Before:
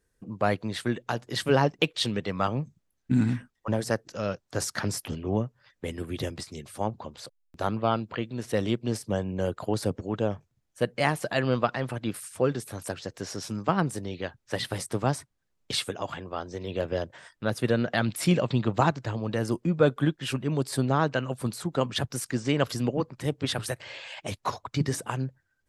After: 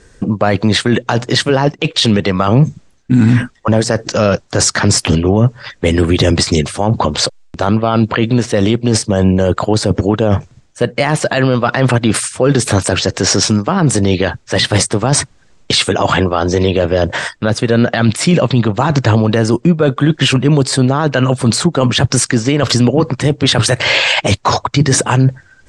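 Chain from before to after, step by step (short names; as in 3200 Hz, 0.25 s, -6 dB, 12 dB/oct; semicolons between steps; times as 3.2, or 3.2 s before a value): steep low-pass 8500 Hz 36 dB/oct; reverse; compressor 16:1, threshold -33 dBFS, peak gain reduction 19 dB; reverse; maximiser +31 dB; gain -1 dB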